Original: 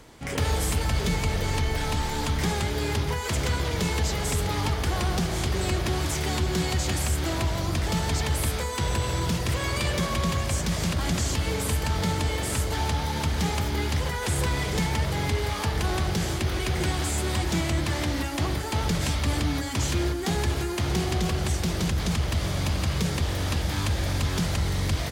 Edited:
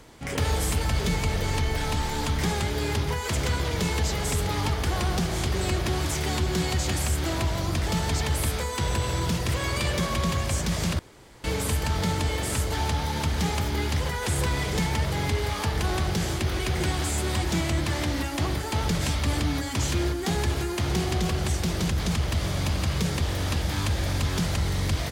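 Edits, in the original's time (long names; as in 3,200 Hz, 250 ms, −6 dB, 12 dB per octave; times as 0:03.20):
0:10.99–0:11.44: fill with room tone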